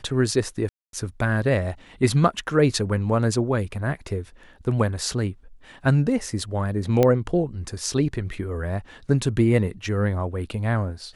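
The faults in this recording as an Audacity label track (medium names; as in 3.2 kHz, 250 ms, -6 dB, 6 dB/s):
0.690000	0.930000	dropout 242 ms
7.030000	7.030000	pop -7 dBFS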